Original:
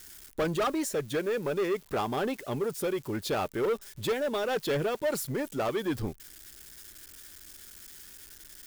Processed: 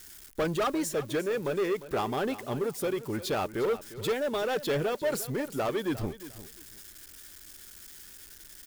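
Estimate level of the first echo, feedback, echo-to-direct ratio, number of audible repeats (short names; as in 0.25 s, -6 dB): -15.0 dB, 22%, -15.0 dB, 2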